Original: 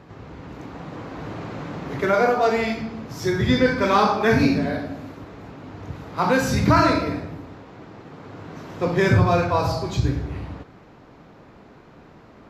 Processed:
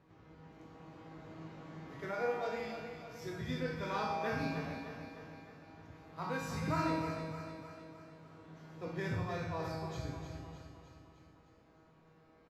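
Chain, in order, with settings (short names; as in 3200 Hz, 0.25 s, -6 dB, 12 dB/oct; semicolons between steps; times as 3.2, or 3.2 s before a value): resonator 160 Hz, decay 1.1 s, mix 90%; feedback echo 0.305 s, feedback 55%, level -8.5 dB; gain -3 dB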